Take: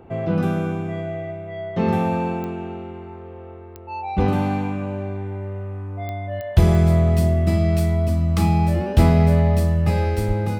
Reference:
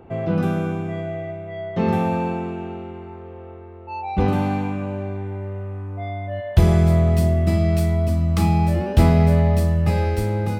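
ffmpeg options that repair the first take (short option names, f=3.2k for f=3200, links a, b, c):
-filter_complex "[0:a]adeclick=t=4,asplit=3[a][b][c];[a]afade=t=out:st=10.27:d=0.02[d];[b]highpass=f=140:w=0.5412,highpass=f=140:w=1.3066,afade=t=in:st=10.27:d=0.02,afade=t=out:st=10.39:d=0.02[e];[c]afade=t=in:st=10.39:d=0.02[f];[d][e][f]amix=inputs=3:normalize=0"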